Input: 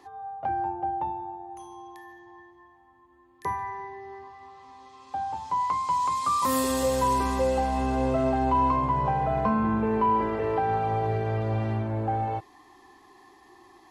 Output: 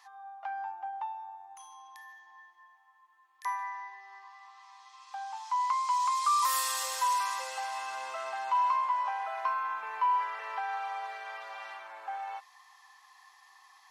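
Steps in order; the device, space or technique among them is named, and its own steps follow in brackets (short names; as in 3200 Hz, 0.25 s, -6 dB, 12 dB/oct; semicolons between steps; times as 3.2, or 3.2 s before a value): headphones lying on a table (HPF 1000 Hz 24 dB/oct; bell 5600 Hz +4 dB 0.4 oct)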